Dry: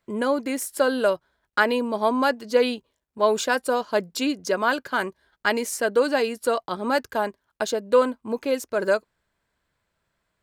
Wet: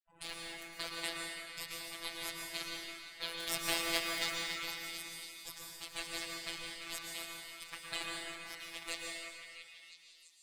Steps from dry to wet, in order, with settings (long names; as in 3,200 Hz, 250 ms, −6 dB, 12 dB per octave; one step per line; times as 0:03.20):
adaptive Wiener filter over 41 samples
gate on every frequency bin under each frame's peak −10 dB weak
hum removal 180.9 Hz, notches 37
gate on every frequency bin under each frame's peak −20 dB weak
0:03.46–0:04.30: leveller curve on the samples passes 3
echo through a band-pass that steps 336 ms, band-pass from 1,700 Hz, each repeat 0.7 octaves, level −6 dB
phases set to zero 167 Hz
dense smooth reverb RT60 1.9 s, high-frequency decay 0.8×, pre-delay 100 ms, DRR −1 dB
every ending faded ahead of time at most 190 dB per second
level +5 dB